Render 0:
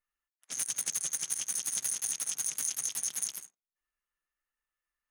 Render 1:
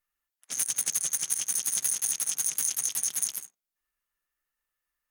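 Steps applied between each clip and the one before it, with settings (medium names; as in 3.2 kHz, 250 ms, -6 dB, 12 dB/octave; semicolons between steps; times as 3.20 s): peaking EQ 15 kHz +8 dB 0.59 oct; trim +3 dB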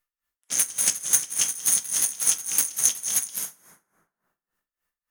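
waveshaping leveller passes 1; plate-style reverb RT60 1.9 s, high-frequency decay 0.4×, DRR 1.5 dB; logarithmic tremolo 3.5 Hz, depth 19 dB; trim +6 dB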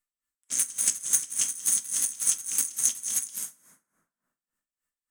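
graphic EQ with 31 bands 250 Hz +7 dB, 400 Hz -5 dB, 800 Hz -6 dB, 8 kHz +12 dB; trim -7 dB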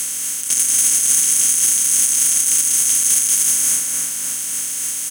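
spectral levelling over time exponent 0.2; comb 7 ms, depth 37%; peak limiter -11.5 dBFS, peak gain reduction 11 dB; trim +7.5 dB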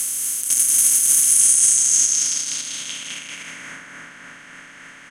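low-pass sweep 12 kHz -> 1.8 kHz, 1.19–3.77 s; trim -4.5 dB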